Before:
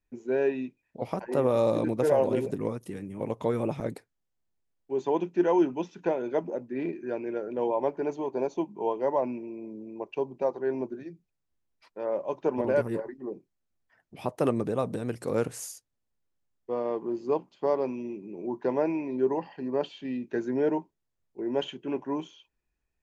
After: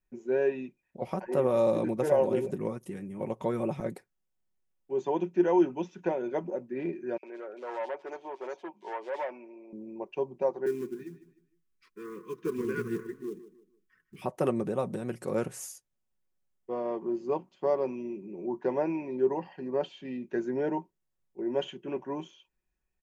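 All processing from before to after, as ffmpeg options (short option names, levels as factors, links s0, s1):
-filter_complex "[0:a]asettb=1/sr,asplit=3[s0][s1][s2];[s0]atrim=end=7.174[s3];[s1]atrim=start=7.17:end=9.73,asetpts=PTS-STARTPTS,afade=t=in:d=0.004:c=qsin,afade=t=out:st=2.556:d=0.004:c=qsin,asoftclip=type=hard:threshold=0.0501,highpass=580,lowpass=5500,acrossover=split=3100[s4][s5];[s4]adelay=60[s6];[s6][s5]amix=inputs=2:normalize=0,atrim=end_sample=112896[s7];[s2]atrim=start=9.726[s8];[s3][s7]acrossfade=d=0.004:c1=hsin:c2=qsin[s9];[s9][s8]acrossfade=d=0.004:c1=qsin:c2=hsin,asettb=1/sr,asplit=3[s10][s11][s12];[s10]atrim=end=10.664[s13];[s11]atrim=start=10.66:end=14.22,asetpts=PTS-STARTPTS,afade=t=in:d=0.004:c=qsin,afade=t=out:st=3.556:d=0.004:c=qsin,asuperstop=centerf=700:order=20:qfactor=1.3,acrusher=bits=6:mode=log:mix=0:aa=0.000001,aecho=1:1:153|306|459:0.188|0.064|0.0218,atrim=end_sample=156996[s14];[s12]atrim=start=14.216[s15];[s13][s14]acrossfade=d=0.004:c1=hsin:c2=qsin[s16];[s16][s15]acrossfade=d=0.004:c1=qsin:c2=hsin,equalizer=f=4200:t=o:w=0.57:g=-4.5,aecho=1:1:5.4:0.43,volume=0.75"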